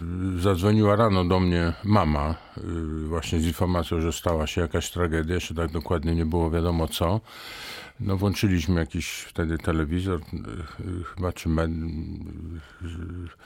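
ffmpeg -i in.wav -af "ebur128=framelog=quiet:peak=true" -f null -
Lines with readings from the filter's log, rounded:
Integrated loudness:
  I:         -25.7 LUFS
  Threshold: -36.2 LUFS
Loudness range:
  LRA:         5.7 LU
  Threshold: -46.5 LUFS
  LRA low:   -29.1 LUFS
  LRA high:  -23.5 LUFS
True peak:
  Peak:       -6.2 dBFS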